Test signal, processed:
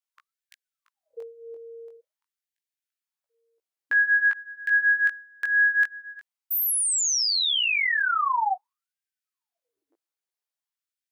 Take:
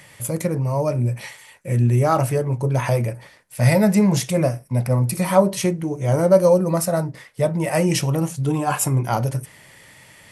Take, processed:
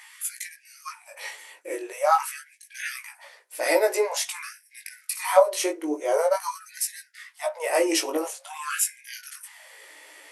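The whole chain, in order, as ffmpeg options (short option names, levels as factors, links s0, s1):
-af "flanger=delay=15.5:depth=5.9:speed=0.28,afftfilt=real='re*gte(b*sr/1024,260*pow(1600/260,0.5+0.5*sin(2*PI*0.47*pts/sr)))':imag='im*gte(b*sr/1024,260*pow(1600/260,0.5+0.5*sin(2*PI*0.47*pts/sr)))':win_size=1024:overlap=0.75,volume=1.33"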